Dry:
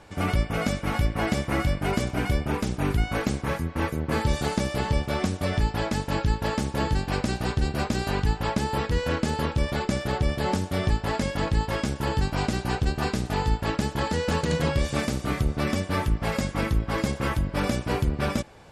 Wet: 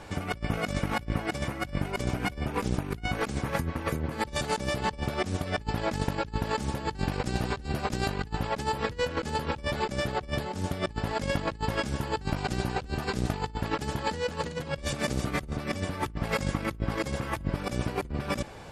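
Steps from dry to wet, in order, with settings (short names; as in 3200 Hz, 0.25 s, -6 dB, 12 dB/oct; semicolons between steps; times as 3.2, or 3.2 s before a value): negative-ratio compressor -30 dBFS, ratio -0.5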